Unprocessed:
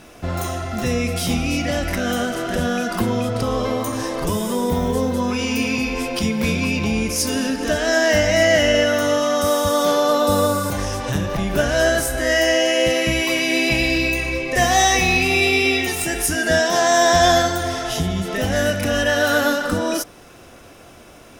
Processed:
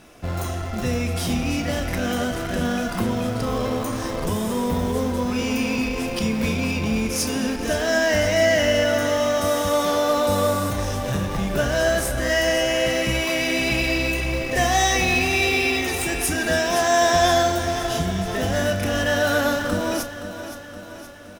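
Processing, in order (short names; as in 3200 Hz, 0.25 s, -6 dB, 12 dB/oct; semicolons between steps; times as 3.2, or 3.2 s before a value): in parallel at -9.5 dB: Schmitt trigger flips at -21 dBFS; on the sum: doubler 32 ms -13 dB; feedback echo 0.52 s, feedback 57%, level -12 dB; gain -5 dB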